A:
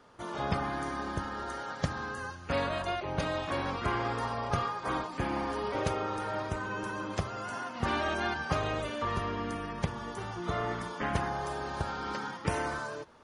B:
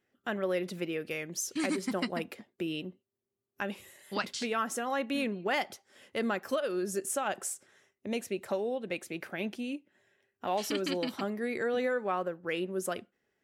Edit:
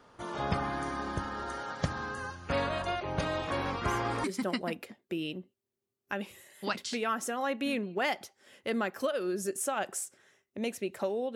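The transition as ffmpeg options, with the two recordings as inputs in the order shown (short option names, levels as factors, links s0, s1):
-filter_complex "[1:a]asplit=2[s0][s1];[0:a]apad=whole_dur=11.35,atrim=end=11.35,atrim=end=4.242[s2];[s1]atrim=start=1.728:end=8.84[s3];[s0]atrim=start=0.75:end=1.73,asetpts=PTS-STARTPTS,volume=0.2,afade=t=in:d=0.004:c=hsin,afade=t=out:st=0.976:d=0.004:c=hsin,adelay=3260[s4];[s2][s3]acrossfade=d=0.004:c1=hsin:c2=hsin[s5];[s5][s4]amix=inputs=2:normalize=0"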